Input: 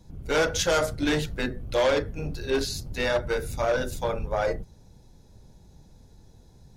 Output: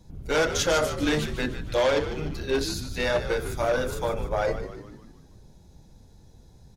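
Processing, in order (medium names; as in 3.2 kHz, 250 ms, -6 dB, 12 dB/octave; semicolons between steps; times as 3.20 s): frequency-shifting echo 149 ms, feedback 52%, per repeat -74 Hz, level -11 dB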